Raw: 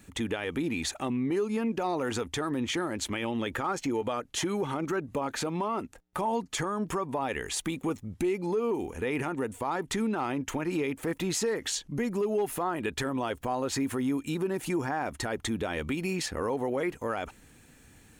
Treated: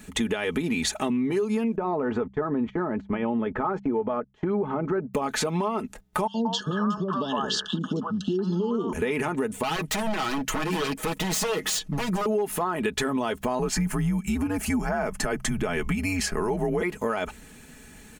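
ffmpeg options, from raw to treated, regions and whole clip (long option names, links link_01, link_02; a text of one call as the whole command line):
ffmpeg -i in.wav -filter_complex "[0:a]asettb=1/sr,asplit=3[link_01][link_02][link_03];[link_01]atrim=end=1.764[link_04];[link_02]atrim=start=1.76:end=5.14,asetpts=PTS-STARTPTS,afade=type=in:duration=0.004:curve=qsin,afade=type=out:start_time=3.376:duration=0.004:curve=qsin,lowpass=1200,agate=range=-23dB:threshold=-41dB:ratio=16:release=100:detection=peak[link_05];[link_03]atrim=start=5.136[link_06];[link_04][link_05]acrossfade=duration=0.004:curve1=hsin:curve2=qsin[link_07];[link_07][link_06]acrossfade=duration=0.004:curve1=qsin:curve2=hsin,asettb=1/sr,asplit=3[link_08][link_09][link_10];[link_08]atrim=end=6.274[link_11];[link_09]atrim=start=6.27:end=8.93,asetpts=PTS-STARTPTS,afade=type=in:duration=0.004:curve=qsin,afade=type=out:start_time=2.656:duration=0.004:curve=qsin,asuperstop=centerf=2200:order=12:qfactor=2,highpass=140,equalizer=frequency=190:width_type=q:width=4:gain=7,equalizer=frequency=430:width_type=q:width=4:gain=-5,equalizer=frequency=770:width_type=q:width=4:gain=-6,equalizer=frequency=1200:width_type=q:width=4:gain=5,equalizer=frequency=3100:width_type=q:width=4:gain=6,equalizer=frequency=5100:width_type=q:width=4:gain=6,lowpass=frequency=5400:width=0.5412,lowpass=frequency=5400:width=1.3066,acrossover=split=610|1900[link_12][link_13][link_14];[link_12]adelay=70[link_15];[link_13]adelay=180[link_16];[link_15][link_16][link_14]amix=inputs=3:normalize=0,atrim=end_sample=117306[link_17];[link_10]atrim=start=8.926[link_18];[link_11][link_17]acrossfade=duration=0.004:curve1=hsin:curve2=qsin[link_19];[link_19][link_18]acrossfade=duration=0.004:curve1=qsin:curve2=hsin,asettb=1/sr,asplit=3[link_20][link_21][link_22];[link_20]atrim=end=9.634[link_23];[link_21]atrim=start=9.63:end=12.26,asetpts=PTS-STARTPTS,afade=type=in:duration=0.004:curve=qsin,afade=type=out:start_time=2.626:duration=0.004:curve=qsin,aeval=exprs='0.0335*(abs(mod(val(0)/0.0335+3,4)-2)-1)':channel_layout=same,aecho=1:1:6.3:0.55,atrim=end_sample=115983[link_24];[link_22]atrim=start=12.256[link_25];[link_23][link_24]acrossfade=duration=0.004:curve1=hsin:curve2=qsin[link_26];[link_26][link_25]acrossfade=duration=0.004:curve1=qsin:curve2=hsin,asettb=1/sr,asplit=3[link_27][link_28][link_29];[link_27]atrim=end=13.594[link_30];[link_28]atrim=start=13.59:end=16.82,asetpts=PTS-STARTPTS,afade=type=in:duration=0.004:curve=qsin,afade=type=out:start_time=3.226:duration=0.004:curve=qsin,equalizer=frequency=3800:width=5:gain=-12,afreqshift=-93[link_31];[link_29]atrim=start=16.816[link_32];[link_30][link_31]acrossfade=duration=0.004:curve1=hsin:curve2=qsin[link_33];[link_33][link_32]acrossfade=duration=0.004:curve1=qsin:curve2=hsin,aecho=1:1:4.7:0.55,bandreject=frequency=66.03:width_type=h:width=4,bandreject=frequency=132.06:width_type=h:width=4,bandreject=frequency=198.09:width_type=h:width=4,acompressor=threshold=-30dB:ratio=6,volume=7.5dB" out.wav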